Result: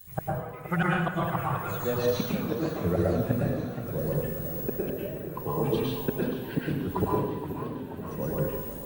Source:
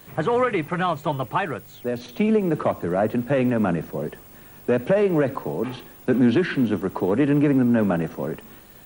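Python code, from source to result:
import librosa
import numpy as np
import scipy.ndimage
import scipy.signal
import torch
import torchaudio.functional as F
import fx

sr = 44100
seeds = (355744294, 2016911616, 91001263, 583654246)

p1 = fx.bin_expand(x, sr, power=1.5)
p2 = fx.peak_eq(p1, sr, hz=70.0, db=9.0, octaves=1.5)
p3 = 10.0 ** (-24.0 / 20.0) * np.tanh(p2 / 10.0 ** (-24.0 / 20.0))
p4 = p2 + F.gain(torch.from_numpy(p3), -10.5).numpy()
p5 = fx.gate_flip(p4, sr, shuts_db=-16.0, range_db=-27)
p6 = fx.echo_diffused(p5, sr, ms=566, feedback_pct=66, wet_db=-16.0)
p7 = fx.rev_plate(p6, sr, seeds[0], rt60_s=0.92, hf_ratio=0.8, predelay_ms=95, drr_db=-5.0)
y = fx.echo_warbled(p7, sr, ms=478, feedback_pct=62, rate_hz=2.8, cents=164, wet_db=-11.0)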